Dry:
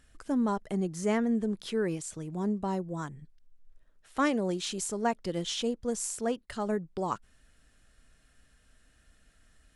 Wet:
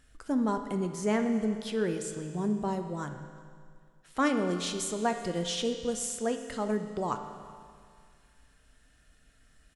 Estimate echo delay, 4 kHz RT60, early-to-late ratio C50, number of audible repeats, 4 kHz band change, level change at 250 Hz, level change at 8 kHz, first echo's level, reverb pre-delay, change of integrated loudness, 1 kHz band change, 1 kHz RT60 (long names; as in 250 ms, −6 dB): 370 ms, 2.0 s, 7.5 dB, 1, +1.0 dB, +0.5 dB, +0.5 dB, −23.5 dB, 7 ms, +0.5 dB, +1.0 dB, 2.1 s